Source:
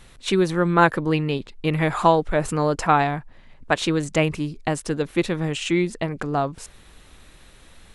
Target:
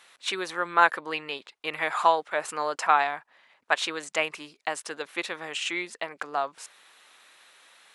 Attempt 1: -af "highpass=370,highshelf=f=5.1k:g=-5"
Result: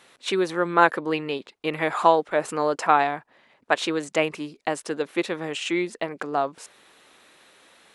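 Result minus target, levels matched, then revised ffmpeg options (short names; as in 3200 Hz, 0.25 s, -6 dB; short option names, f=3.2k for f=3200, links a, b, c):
500 Hz band +4.5 dB
-af "highpass=860,highshelf=f=5.1k:g=-5"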